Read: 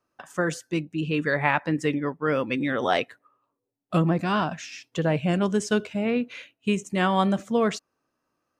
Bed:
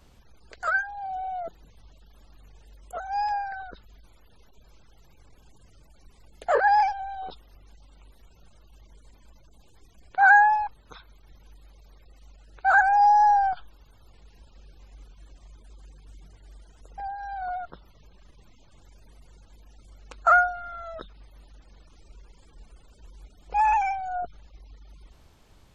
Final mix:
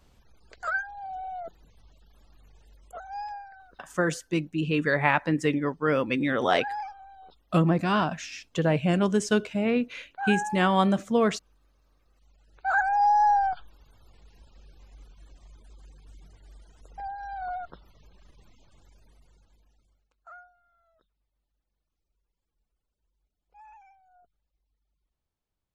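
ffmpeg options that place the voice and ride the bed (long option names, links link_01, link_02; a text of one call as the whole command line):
ffmpeg -i stem1.wav -i stem2.wav -filter_complex "[0:a]adelay=3600,volume=0dB[link_01];[1:a]volume=8dB,afade=type=out:start_time=2.7:duration=0.81:silence=0.316228,afade=type=in:start_time=12.09:duration=1.24:silence=0.251189,afade=type=out:start_time=18.47:duration=1.62:silence=0.0375837[link_02];[link_01][link_02]amix=inputs=2:normalize=0" out.wav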